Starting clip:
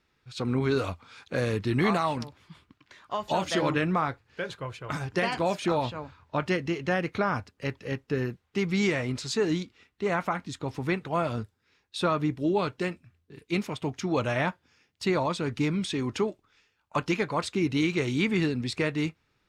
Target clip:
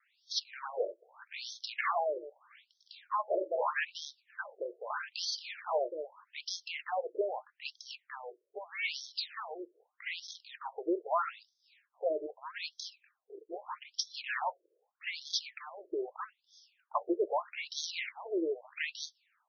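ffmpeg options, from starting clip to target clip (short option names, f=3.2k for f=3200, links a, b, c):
-af "asoftclip=type=tanh:threshold=-25dB,aexciter=amount=4.7:drive=1.8:freq=4.9k,afftfilt=real='re*between(b*sr/1024,440*pow(4600/440,0.5+0.5*sin(2*PI*0.8*pts/sr))/1.41,440*pow(4600/440,0.5+0.5*sin(2*PI*0.8*pts/sr))*1.41)':imag='im*between(b*sr/1024,440*pow(4600/440,0.5+0.5*sin(2*PI*0.8*pts/sr))/1.41,440*pow(4600/440,0.5+0.5*sin(2*PI*0.8*pts/sr))*1.41)':win_size=1024:overlap=0.75,volume=4dB"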